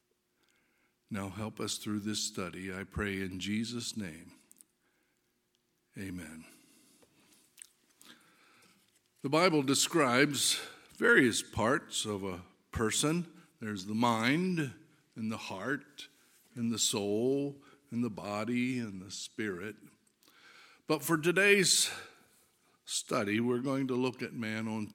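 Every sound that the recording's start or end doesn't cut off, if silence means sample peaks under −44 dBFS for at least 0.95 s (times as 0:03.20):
0:01.11–0:04.61
0:05.97–0:06.42
0:07.58–0:08.11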